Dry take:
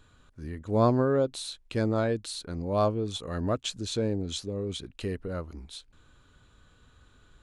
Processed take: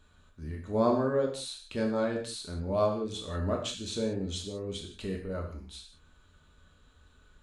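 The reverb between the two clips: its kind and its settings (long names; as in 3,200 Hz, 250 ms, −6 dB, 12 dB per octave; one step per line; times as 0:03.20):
reverb whose tail is shaped and stops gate 210 ms falling, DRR 0 dB
level −5 dB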